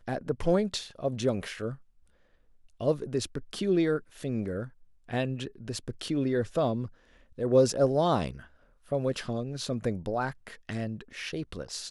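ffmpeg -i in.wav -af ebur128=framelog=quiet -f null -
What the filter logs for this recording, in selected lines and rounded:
Integrated loudness:
  I:         -30.4 LUFS
  Threshold: -40.8 LUFS
Loudness range:
  LRA:         5.2 LU
  Threshold: -50.7 LUFS
  LRA low:   -33.6 LUFS
  LRA high:  -28.4 LUFS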